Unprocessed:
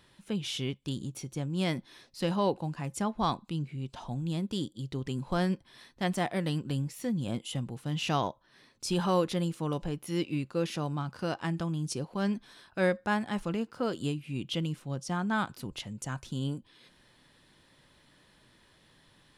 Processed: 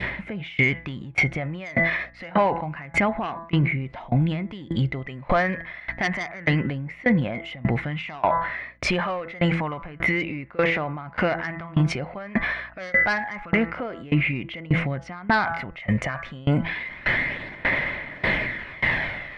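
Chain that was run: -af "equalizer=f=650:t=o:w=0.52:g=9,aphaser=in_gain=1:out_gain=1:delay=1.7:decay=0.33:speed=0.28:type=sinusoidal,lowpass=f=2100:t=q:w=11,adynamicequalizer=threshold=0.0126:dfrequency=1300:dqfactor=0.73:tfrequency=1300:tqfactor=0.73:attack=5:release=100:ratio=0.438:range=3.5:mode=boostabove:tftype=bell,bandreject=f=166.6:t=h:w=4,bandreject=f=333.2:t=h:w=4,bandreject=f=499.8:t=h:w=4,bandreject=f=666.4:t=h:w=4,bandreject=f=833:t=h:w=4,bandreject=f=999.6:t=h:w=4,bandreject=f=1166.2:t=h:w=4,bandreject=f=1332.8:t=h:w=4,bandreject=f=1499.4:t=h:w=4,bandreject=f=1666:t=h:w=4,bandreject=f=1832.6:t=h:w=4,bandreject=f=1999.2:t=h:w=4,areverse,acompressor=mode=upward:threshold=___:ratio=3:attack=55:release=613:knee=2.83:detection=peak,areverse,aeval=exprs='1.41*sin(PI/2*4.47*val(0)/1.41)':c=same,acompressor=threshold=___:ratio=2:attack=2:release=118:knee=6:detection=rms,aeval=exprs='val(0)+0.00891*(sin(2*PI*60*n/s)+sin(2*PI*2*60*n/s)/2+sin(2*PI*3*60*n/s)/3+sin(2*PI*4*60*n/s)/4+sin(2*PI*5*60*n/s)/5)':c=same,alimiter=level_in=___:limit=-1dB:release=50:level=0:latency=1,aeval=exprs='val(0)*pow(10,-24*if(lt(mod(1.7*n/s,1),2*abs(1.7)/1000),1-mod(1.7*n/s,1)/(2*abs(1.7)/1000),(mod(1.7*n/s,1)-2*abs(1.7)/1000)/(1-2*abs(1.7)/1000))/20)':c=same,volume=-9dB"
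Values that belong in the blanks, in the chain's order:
-25dB, -11dB, 13dB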